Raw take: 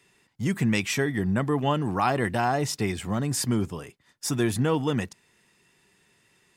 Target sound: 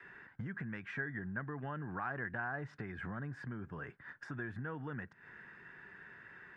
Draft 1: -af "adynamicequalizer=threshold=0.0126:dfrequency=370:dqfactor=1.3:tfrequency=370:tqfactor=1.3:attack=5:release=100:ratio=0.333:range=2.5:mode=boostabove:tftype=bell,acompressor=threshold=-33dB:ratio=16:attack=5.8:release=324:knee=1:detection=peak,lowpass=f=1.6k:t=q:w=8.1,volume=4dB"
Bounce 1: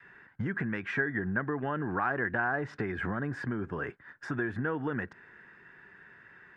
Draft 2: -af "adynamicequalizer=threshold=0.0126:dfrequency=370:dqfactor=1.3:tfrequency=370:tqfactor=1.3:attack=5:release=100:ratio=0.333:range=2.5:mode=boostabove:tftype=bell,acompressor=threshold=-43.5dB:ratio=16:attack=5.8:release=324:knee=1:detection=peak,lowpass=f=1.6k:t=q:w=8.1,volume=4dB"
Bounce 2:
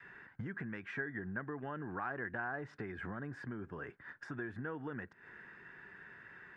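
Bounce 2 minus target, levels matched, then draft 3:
125 Hz band -3.0 dB
-af "adynamicequalizer=threshold=0.0126:dfrequency=140:dqfactor=1.3:tfrequency=140:tqfactor=1.3:attack=5:release=100:ratio=0.333:range=2.5:mode=boostabove:tftype=bell,acompressor=threshold=-43.5dB:ratio=16:attack=5.8:release=324:knee=1:detection=peak,lowpass=f=1.6k:t=q:w=8.1,volume=4dB"

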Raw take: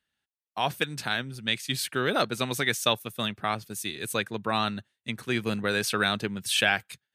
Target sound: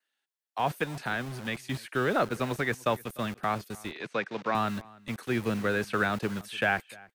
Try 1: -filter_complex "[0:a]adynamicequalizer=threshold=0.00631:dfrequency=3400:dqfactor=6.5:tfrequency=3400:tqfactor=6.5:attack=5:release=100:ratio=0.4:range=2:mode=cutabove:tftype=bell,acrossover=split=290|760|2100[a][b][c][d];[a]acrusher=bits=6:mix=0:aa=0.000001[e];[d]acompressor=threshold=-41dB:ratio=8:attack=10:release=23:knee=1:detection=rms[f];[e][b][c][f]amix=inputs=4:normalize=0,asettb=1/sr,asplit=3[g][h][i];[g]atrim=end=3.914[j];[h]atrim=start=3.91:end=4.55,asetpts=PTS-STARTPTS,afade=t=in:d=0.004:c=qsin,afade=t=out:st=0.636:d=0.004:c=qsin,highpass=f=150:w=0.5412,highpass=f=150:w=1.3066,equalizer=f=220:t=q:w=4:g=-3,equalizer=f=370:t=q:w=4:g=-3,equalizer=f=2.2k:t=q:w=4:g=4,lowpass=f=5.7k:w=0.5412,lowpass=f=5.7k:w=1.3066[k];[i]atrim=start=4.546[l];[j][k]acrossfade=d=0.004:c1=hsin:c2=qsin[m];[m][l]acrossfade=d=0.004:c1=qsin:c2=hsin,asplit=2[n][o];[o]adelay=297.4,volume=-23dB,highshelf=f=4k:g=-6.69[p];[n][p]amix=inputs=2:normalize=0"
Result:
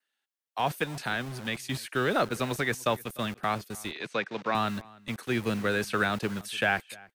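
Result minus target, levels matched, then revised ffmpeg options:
compressor: peak gain reduction -7.5 dB
-filter_complex "[0:a]adynamicequalizer=threshold=0.00631:dfrequency=3400:dqfactor=6.5:tfrequency=3400:tqfactor=6.5:attack=5:release=100:ratio=0.4:range=2:mode=cutabove:tftype=bell,acrossover=split=290|760|2100[a][b][c][d];[a]acrusher=bits=6:mix=0:aa=0.000001[e];[d]acompressor=threshold=-49.5dB:ratio=8:attack=10:release=23:knee=1:detection=rms[f];[e][b][c][f]amix=inputs=4:normalize=0,asettb=1/sr,asplit=3[g][h][i];[g]atrim=end=3.914[j];[h]atrim=start=3.91:end=4.55,asetpts=PTS-STARTPTS,afade=t=in:d=0.004:c=qsin,afade=t=out:st=0.636:d=0.004:c=qsin,highpass=f=150:w=0.5412,highpass=f=150:w=1.3066,equalizer=f=220:t=q:w=4:g=-3,equalizer=f=370:t=q:w=4:g=-3,equalizer=f=2.2k:t=q:w=4:g=4,lowpass=f=5.7k:w=0.5412,lowpass=f=5.7k:w=1.3066[k];[i]atrim=start=4.546[l];[j][k]acrossfade=d=0.004:c1=hsin:c2=qsin[m];[m][l]acrossfade=d=0.004:c1=qsin:c2=hsin,asplit=2[n][o];[o]adelay=297.4,volume=-23dB,highshelf=f=4k:g=-6.69[p];[n][p]amix=inputs=2:normalize=0"

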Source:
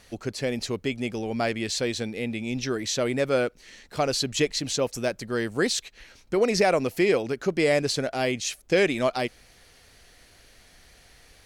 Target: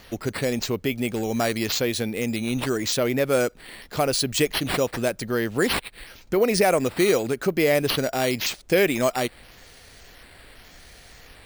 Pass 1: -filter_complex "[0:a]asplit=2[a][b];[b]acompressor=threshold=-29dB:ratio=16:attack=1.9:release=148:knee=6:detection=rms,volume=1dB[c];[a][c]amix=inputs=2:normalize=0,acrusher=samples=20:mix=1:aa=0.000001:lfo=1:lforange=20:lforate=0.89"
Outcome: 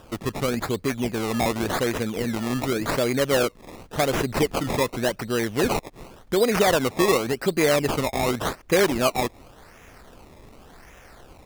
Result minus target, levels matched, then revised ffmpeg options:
decimation with a swept rate: distortion +8 dB
-filter_complex "[0:a]asplit=2[a][b];[b]acompressor=threshold=-29dB:ratio=16:attack=1.9:release=148:knee=6:detection=rms,volume=1dB[c];[a][c]amix=inputs=2:normalize=0,acrusher=samples=5:mix=1:aa=0.000001:lfo=1:lforange=5:lforate=0.89"

